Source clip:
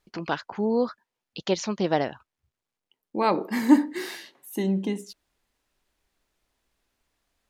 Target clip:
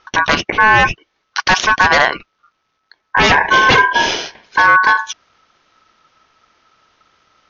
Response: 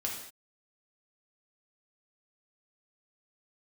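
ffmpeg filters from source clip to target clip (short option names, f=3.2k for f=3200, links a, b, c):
-af "aresample=11025,aeval=exprs='0.0891*(abs(mod(val(0)/0.0891+3,4)-2)-1)':c=same,aresample=44100,aeval=exprs='val(0)*sin(2*PI*1300*n/s)':c=same,alimiter=level_in=24dB:limit=-1dB:release=50:level=0:latency=1,volume=-1dB"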